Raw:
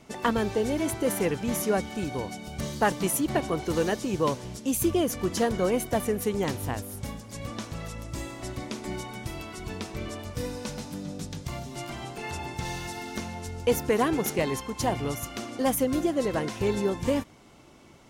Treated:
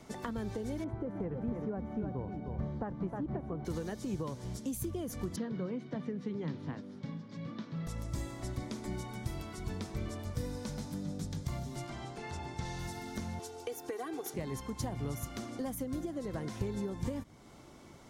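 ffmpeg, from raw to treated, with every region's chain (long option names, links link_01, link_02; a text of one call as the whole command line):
ffmpeg -i in.wav -filter_complex "[0:a]asettb=1/sr,asplit=3[link_01][link_02][link_03];[link_01]atrim=end=0.844[link_04];[link_02]atrim=start=0.84:end=3.65,asetpts=PTS-STARTPTS,afade=type=in:duration=0.004:curve=qsin,afade=type=out:start_time=2.806:duration=0.004:curve=qsin,lowpass=1200,aecho=1:1:310:0.398,atrim=end_sample=123921[link_05];[link_03]atrim=start=3.646[link_06];[link_04][link_05]acrossfade=duration=0.004:curve1=hsin:curve2=qsin[link_07];[link_07][link_06]acrossfade=duration=0.004:curve1=qsin:curve2=hsin,asettb=1/sr,asplit=3[link_08][link_09][link_10];[link_08]atrim=end=5.364[link_11];[link_09]atrim=start=5.36:end=7.87,asetpts=PTS-STARTPTS,afade=type=in:duration=0.004:curve=qsin,afade=type=out:start_time=2.506:duration=0.004:curve=qsin,highpass=frequency=140:width=0.5412,highpass=frequency=140:width=1.3066,equalizer=frequency=160:width_type=q:width=4:gain=9,equalizer=frequency=270:width_type=q:width=4:gain=5,equalizer=frequency=740:width_type=q:width=4:gain=-7,lowpass=frequency=4400:width=0.5412,lowpass=frequency=4400:width=1.3066,flanger=delay=4.6:depth=3.8:regen=-78:speed=1.3:shape=sinusoidal[link_12];[link_10]atrim=start=7.866[link_13];[link_11][link_12]acrossfade=duration=0.004:curve1=hsin:curve2=qsin[link_14];[link_14][link_13]acrossfade=duration=0.004:curve1=qsin:curve2=hsin,asettb=1/sr,asplit=3[link_15][link_16][link_17];[link_15]atrim=end=11.864[link_18];[link_16]atrim=start=11.86:end=12.79,asetpts=PTS-STARTPTS,afade=type=in:duration=0.004:curve=qsin,afade=type=out:start_time=0.926:duration=0.004:curve=qsin,lowpass=7600,bass=frequency=250:gain=-4,treble=frequency=4000:gain=0[link_19];[link_17]atrim=start=12.786[link_20];[link_18][link_19]acrossfade=duration=0.004:curve1=hsin:curve2=qsin[link_21];[link_21][link_20]acrossfade=duration=0.004:curve1=qsin:curve2=hsin,asettb=1/sr,asplit=3[link_22][link_23][link_24];[link_22]atrim=end=13.394[link_25];[link_23]atrim=start=13.39:end=14.34,asetpts=PTS-STARTPTS,afade=type=in:duration=0.004:curve=qsin,afade=type=out:start_time=0.946:duration=0.004:curve=qsin,highpass=370,aecho=1:1:2.6:0.99,atrim=end_sample=41895[link_26];[link_24]atrim=start=14.336[link_27];[link_25][link_26]acrossfade=duration=0.004:curve1=hsin:curve2=qsin[link_28];[link_28][link_27]acrossfade=duration=0.004:curve1=qsin:curve2=hsin,acompressor=threshold=-28dB:ratio=6,equalizer=frequency=2700:width_type=o:width=0.34:gain=-7,acrossover=split=220[link_29][link_30];[link_30]acompressor=threshold=-55dB:ratio=1.5[link_31];[link_29][link_31]amix=inputs=2:normalize=0" out.wav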